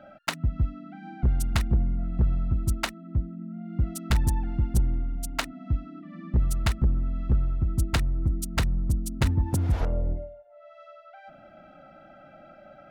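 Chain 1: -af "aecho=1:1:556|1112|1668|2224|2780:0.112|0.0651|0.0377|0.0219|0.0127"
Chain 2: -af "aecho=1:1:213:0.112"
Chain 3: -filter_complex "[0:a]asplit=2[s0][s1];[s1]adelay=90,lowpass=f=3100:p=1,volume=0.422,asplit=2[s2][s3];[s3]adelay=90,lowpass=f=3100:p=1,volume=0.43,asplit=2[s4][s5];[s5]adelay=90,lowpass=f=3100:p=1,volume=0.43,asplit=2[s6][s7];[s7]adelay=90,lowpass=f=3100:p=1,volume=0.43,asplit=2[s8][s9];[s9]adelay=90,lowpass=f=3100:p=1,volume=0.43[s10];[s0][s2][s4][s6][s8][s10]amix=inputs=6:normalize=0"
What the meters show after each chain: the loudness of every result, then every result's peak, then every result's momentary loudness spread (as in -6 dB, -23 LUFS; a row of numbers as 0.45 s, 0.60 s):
-28.0 LUFS, -28.0 LUFS, -26.5 LUFS; -15.0 dBFS, -15.0 dBFS, -13.0 dBFS; 15 LU, 8 LU, 9 LU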